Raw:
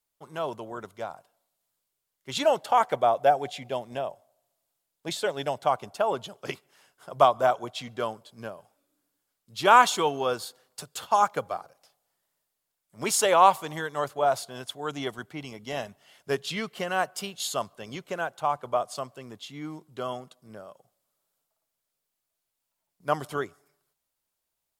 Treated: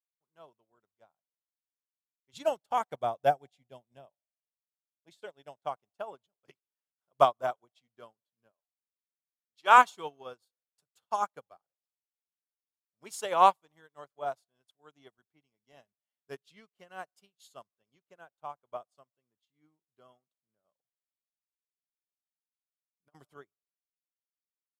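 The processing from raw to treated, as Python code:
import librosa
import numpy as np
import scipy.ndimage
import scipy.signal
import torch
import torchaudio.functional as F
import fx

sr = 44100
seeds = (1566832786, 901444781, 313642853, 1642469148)

y = fx.bass_treble(x, sr, bass_db=8, treble_db=4, at=(2.33, 4.06))
y = fx.weighting(y, sr, curve='A', at=(8.51, 9.78))
y = fx.over_compress(y, sr, threshold_db=-30.0, ratio=-0.5, at=(20.64, 23.34))
y = fx.upward_expand(y, sr, threshold_db=-42.0, expansion=2.5)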